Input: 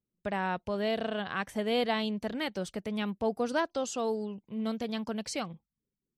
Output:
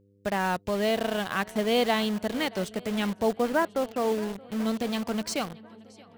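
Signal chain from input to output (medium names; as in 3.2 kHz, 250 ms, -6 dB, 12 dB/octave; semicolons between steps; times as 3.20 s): 3.32–4.12 s: low-pass 2.2 kHz 24 dB/octave; shuffle delay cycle 1043 ms, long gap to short 1.5:1, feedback 53%, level -19 dB; in parallel at -3 dB: bit crusher 6-bit; on the sum: mains buzz 100 Hz, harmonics 5, -62 dBFS -3 dB/octave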